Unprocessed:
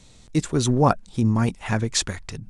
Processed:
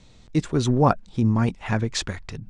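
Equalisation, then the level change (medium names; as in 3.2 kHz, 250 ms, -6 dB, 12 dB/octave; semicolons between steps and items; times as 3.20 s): distance through air 100 m; dynamic bell 9.5 kHz, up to +4 dB, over -57 dBFS, Q 3; 0.0 dB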